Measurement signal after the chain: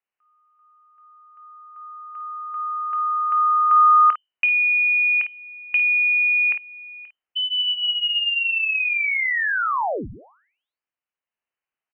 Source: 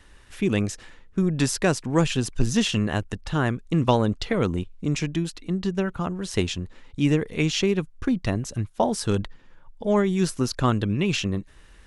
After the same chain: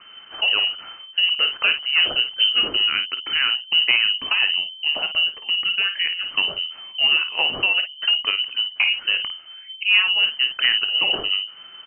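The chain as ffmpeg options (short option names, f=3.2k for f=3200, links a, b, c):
-filter_complex "[0:a]bandreject=f=50:t=h:w=6,bandreject=f=100:t=h:w=6,bandreject=f=150:t=h:w=6,bandreject=f=200:t=h:w=6,asplit=2[a][b];[b]acompressor=threshold=-34dB:ratio=6,volume=0dB[c];[a][c]amix=inputs=2:normalize=0,asoftclip=type=hard:threshold=-13.5dB,aecho=1:1:24|53:0.188|0.335,lowpass=f=2.6k:t=q:w=0.5098,lowpass=f=2.6k:t=q:w=0.6013,lowpass=f=2.6k:t=q:w=0.9,lowpass=f=2.6k:t=q:w=2.563,afreqshift=-3100,volume=1.5dB"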